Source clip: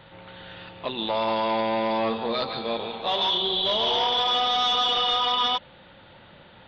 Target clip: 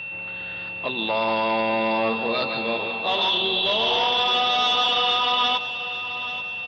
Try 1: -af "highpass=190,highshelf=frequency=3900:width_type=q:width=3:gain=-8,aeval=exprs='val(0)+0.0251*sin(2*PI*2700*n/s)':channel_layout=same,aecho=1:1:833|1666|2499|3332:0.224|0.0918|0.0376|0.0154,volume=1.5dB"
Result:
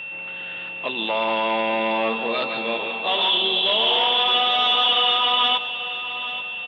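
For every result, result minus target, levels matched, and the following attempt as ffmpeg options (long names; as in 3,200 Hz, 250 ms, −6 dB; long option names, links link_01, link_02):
8,000 Hz band −14.5 dB; 125 Hz band −7.0 dB
-af "highpass=190,aeval=exprs='val(0)+0.0251*sin(2*PI*2700*n/s)':channel_layout=same,aecho=1:1:833|1666|2499|3332:0.224|0.0918|0.0376|0.0154,volume=1.5dB"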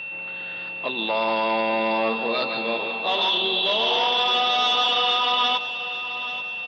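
125 Hz band −5.5 dB
-af "highpass=48,aeval=exprs='val(0)+0.0251*sin(2*PI*2700*n/s)':channel_layout=same,aecho=1:1:833|1666|2499|3332:0.224|0.0918|0.0376|0.0154,volume=1.5dB"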